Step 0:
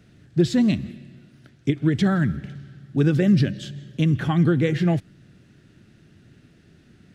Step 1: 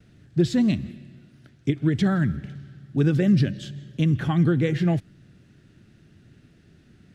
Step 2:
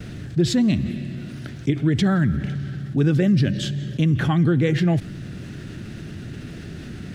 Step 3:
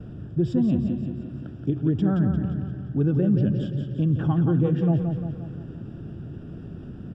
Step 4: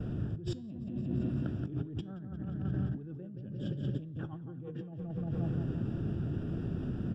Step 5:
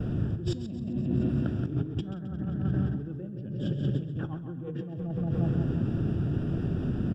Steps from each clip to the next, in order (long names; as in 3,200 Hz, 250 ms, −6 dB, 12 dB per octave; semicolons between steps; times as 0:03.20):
noise gate with hold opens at −48 dBFS; low-shelf EQ 120 Hz +4 dB; level −2.5 dB
envelope flattener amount 50%
moving average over 21 samples; repeating echo 175 ms, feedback 55%, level −6.5 dB; level −3.5 dB
compressor whose output falls as the input rises −33 dBFS, ratio −1; flanger 0.88 Hz, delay 7.6 ms, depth 2.9 ms, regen +90%
repeating echo 133 ms, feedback 42%, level −12 dB; level +6 dB